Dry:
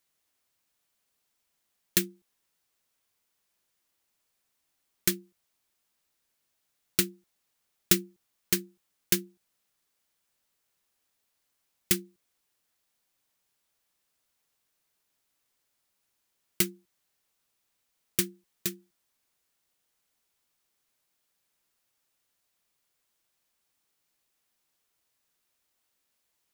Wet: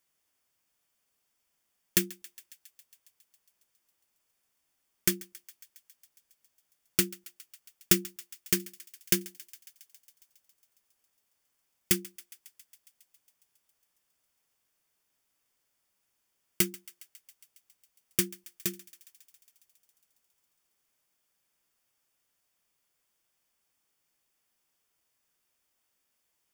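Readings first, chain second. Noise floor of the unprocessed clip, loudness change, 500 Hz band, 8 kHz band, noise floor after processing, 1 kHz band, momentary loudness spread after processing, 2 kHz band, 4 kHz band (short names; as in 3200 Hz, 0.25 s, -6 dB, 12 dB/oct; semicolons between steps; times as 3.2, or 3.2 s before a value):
-78 dBFS, -0.5 dB, 0.0 dB, 0.0 dB, -78 dBFS, 0.0 dB, 22 LU, 0.0 dB, -1.0 dB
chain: notch 4000 Hz, Q 7.7; on a send: thinning echo 0.137 s, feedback 77%, high-pass 1000 Hz, level -20.5 dB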